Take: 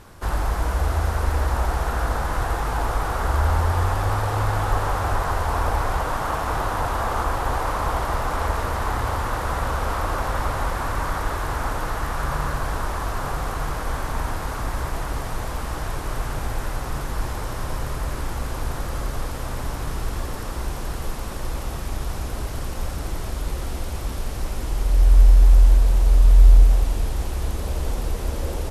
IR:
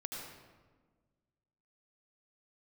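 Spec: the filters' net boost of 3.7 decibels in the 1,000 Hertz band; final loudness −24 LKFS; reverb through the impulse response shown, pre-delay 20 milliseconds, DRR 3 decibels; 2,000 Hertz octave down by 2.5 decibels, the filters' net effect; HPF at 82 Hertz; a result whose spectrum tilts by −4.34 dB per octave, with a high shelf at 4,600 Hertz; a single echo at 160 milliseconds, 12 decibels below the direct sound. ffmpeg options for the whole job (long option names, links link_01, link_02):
-filter_complex "[0:a]highpass=82,equalizer=frequency=1000:width_type=o:gain=6,equalizer=frequency=2000:width_type=o:gain=-8,highshelf=frequency=4600:gain=8,aecho=1:1:160:0.251,asplit=2[link_01][link_02];[1:a]atrim=start_sample=2205,adelay=20[link_03];[link_02][link_03]afir=irnorm=-1:irlink=0,volume=-3dB[link_04];[link_01][link_04]amix=inputs=2:normalize=0"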